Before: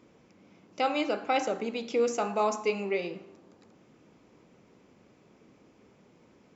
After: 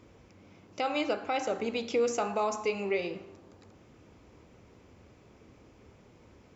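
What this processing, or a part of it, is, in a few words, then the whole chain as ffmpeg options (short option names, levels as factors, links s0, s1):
car stereo with a boomy subwoofer: -af "lowshelf=f=120:t=q:w=1.5:g=10,alimiter=limit=0.0794:level=0:latency=1:release=231,volume=1.33"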